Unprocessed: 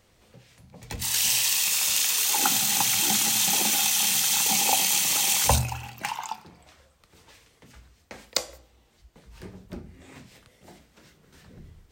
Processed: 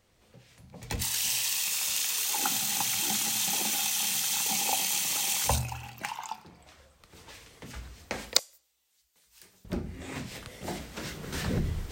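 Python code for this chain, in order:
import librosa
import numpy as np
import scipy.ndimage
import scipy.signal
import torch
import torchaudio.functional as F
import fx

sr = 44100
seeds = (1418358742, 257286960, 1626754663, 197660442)

y = fx.recorder_agc(x, sr, target_db=-14.0, rise_db_per_s=8.5, max_gain_db=30)
y = fx.pre_emphasis(y, sr, coefficient=0.97, at=(8.39, 9.65))
y = F.gain(torch.from_numpy(y), -6.0).numpy()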